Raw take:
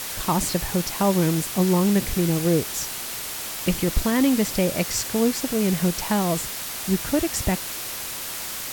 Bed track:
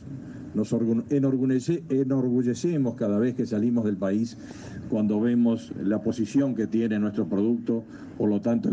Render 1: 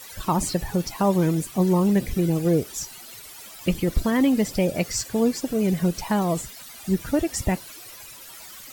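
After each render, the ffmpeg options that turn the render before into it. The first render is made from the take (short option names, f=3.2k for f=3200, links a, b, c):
-af "afftdn=nr=15:nf=-32"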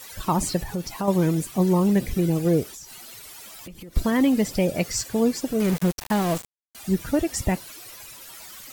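-filter_complex "[0:a]asettb=1/sr,asplit=3[a][b][c];[a]atrim=end=0.634[d];[b]atrim=start=0.63:end=1.08,asetpts=PTS-STARTPTS,afade=t=in:d=0.004:c=qsin,afade=t=out:st=0.446:d=0.004:c=qsin,acompressor=threshold=-32dB:ratio=1.5:attack=3.2:release=140:knee=1:detection=peak[e];[c]atrim=start=1.076[f];[d][e]acrossfade=d=0.004:c1=hsin:c2=qsin[g];[g][f]acrossfade=d=0.004:c1=qsin:c2=hsin,asettb=1/sr,asplit=3[h][i][j];[h]atrim=end=2.664[k];[i]atrim=start=2.66:end=3.96,asetpts=PTS-STARTPTS,afade=t=in:d=0.004:c=qsin,afade=t=out:st=1.296:d=0.004:c=qsin,acompressor=threshold=-37dB:ratio=12:attack=3.2:release=140:knee=1:detection=peak[l];[j]atrim=start=3.956[m];[k][l]acrossfade=d=0.004:c1=hsin:c2=qsin[n];[n][m]acrossfade=d=0.004:c1=qsin:c2=hsin,asettb=1/sr,asplit=3[o][p][q];[o]atrim=end=5.604[r];[p]atrim=start=5.6:end=6.75,asetpts=PTS-STARTPTS,afade=t=in:d=0.004:c=qsin,afade=t=out:st=1.146:d=0.004:c=qsin,aeval=exprs='val(0)*gte(abs(val(0)),0.0447)':c=same[s];[q]atrim=start=6.746[t];[r][s]acrossfade=d=0.004:c1=hsin:c2=qsin[u];[u][t]acrossfade=d=0.004:c1=qsin:c2=hsin"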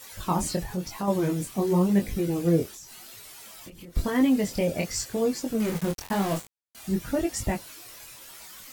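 -af "flanger=delay=19:depth=5.7:speed=0.94"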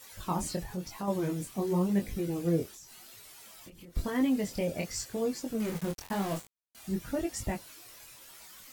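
-af "volume=-6dB"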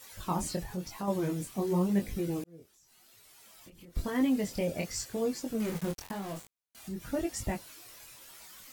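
-filter_complex "[0:a]asettb=1/sr,asplit=3[a][b][c];[a]atrim=end=6.114[d];[b]atrim=start=6.11:end=7.13,asetpts=PTS-STARTPTS,afade=t=in:d=0.004:c=qsin,afade=t=out:st=1.016:d=0.004:c=qsin,acompressor=threshold=-39dB:ratio=2:attack=3.2:release=140:knee=1:detection=peak[e];[c]atrim=start=7.126[f];[d][e]acrossfade=d=0.004:c1=hsin:c2=qsin[g];[g][f]acrossfade=d=0.004:c1=qsin:c2=hsin,asplit=2[h][i];[h]atrim=end=2.44,asetpts=PTS-STARTPTS,afade=t=out:st=2.436:d=0.004:c=hsin[j];[i]atrim=start=2.44,asetpts=PTS-STARTPTS,afade=t=in:d=1.78[k];[j][k]concat=n=2:v=0:a=1"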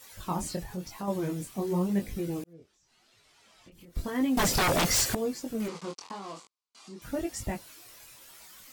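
-filter_complex "[0:a]asettb=1/sr,asplit=3[a][b][c];[a]atrim=end=2.534[d];[b]atrim=start=2.53:end=3.72,asetpts=PTS-STARTPTS,afade=t=in:d=0.004:c=qsin,afade=t=out:st=1.186:d=0.004:c=qsin,lowpass=5.4k[e];[c]atrim=start=3.716[f];[d][e]acrossfade=d=0.004:c1=hsin:c2=qsin[g];[g][f]acrossfade=d=0.004:c1=qsin:c2=hsin,asettb=1/sr,asplit=3[h][i][j];[h]atrim=end=4.374[k];[i]atrim=start=4.37:end=5.15,asetpts=PTS-STARTPTS,afade=t=in:d=0.004:c=qsin,afade=t=out:st=0.776:d=0.004:c=qsin,aeval=exprs='0.0891*sin(PI/2*5.01*val(0)/0.0891)':c=same[l];[j]atrim=start=5.146[m];[k][l]acrossfade=d=0.004:c1=hsin:c2=qsin[n];[n][m]acrossfade=d=0.004:c1=qsin:c2=hsin,asettb=1/sr,asplit=3[o][p][q];[o]atrim=end=5.684[r];[p]atrim=start=5.68:end=7.02,asetpts=PTS-STARTPTS,afade=t=in:d=0.004:c=qsin,afade=t=out:st=1.336:d=0.004:c=qsin,highpass=300,equalizer=f=630:t=q:w=4:g=-5,equalizer=f=1.1k:t=q:w=4:g=9,equalizer=f=1.7k:t=q:w=4:g=-8,equalizer=f=4.6k:t=q:w=4:g=5,lowpass=f=7.9k:w=0.5412,lowpass=f=7.9k:w=1.3066[s];[q]atrim=start=7.016[t];[r][s]acrossfade=d=0.004:c1=hsin:c2=qsin[u];[u][t]acrossfade=d=0.004:c1=qsin:c2=hsin"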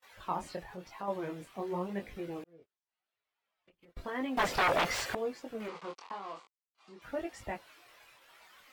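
-filter_complex "[0:a]agate=range=-23dB:threshold=-52dB:ratio=16:detection=peak,acrossover=split=430 3400:gain=0.224 1 0.126[a][b][c];[a][b][c]amix=inputs=3:normalize=0"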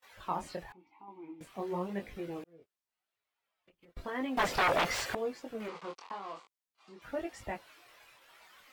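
-filter_complex "[0:a]asettb=1/sr,asplit=3[a][b][c];[a]atrim=end=0.724[d];[b]atrim=start=0.72:end=1.41,asetpts=PTS-STARTPTS,afade=t=in:d=0.004:c=qsin,afade=t=out:st=0.686:d=0.004:c=qsin,asplit=3[e][f][g];[e]bandpass=f=300:t=q:w=8,volume=0dB[h];[f]bandpass=f=870:t=q:w=8,volume=-6dB[i];[g]bandpass=f=2.24k:t=q:w=8,volume=-9dB[j];[h][i][j]amix=inputs=3:normalize=0[k];[c]atrim=start=1.406[l];[d][k]acrossfade=d=0.004:c1=hsin:c2=qsin[m];[m][l]acrossfade=d=0.004:c1=qsin:c2=hsin"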